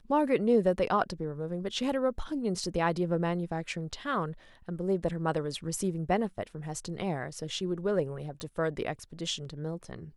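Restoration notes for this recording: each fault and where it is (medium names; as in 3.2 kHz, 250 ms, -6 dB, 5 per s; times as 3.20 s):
8.40 s: pop -26 dBFS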